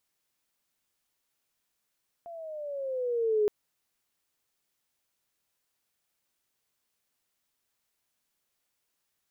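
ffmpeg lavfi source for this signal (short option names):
-f lavfi -i "aevalsrc='pow(10,(-21+19*(t/1.22-1))/20)*sin(2*PI*692*1.22/(-9*log(2)/12)*(exp(-9*log(2)/12*t/1.22)-1))':d=1.22:s=44100"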